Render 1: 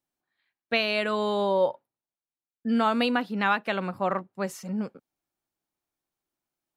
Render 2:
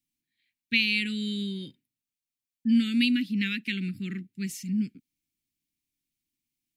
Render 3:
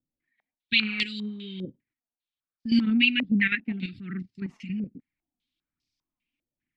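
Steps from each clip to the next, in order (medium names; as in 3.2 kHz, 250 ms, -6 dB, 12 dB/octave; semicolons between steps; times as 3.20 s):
elliptic band-stop 280–2200 Hz, stop band 50 dB; trim +3.5 dB
level held to a coarse grid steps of 10 dB; phaser 1.2 Hz, delay 4.8 ms, feedback 47%; step-sequenced low-pass 5 Hz 550–4900 Hz; trim +3.5 dB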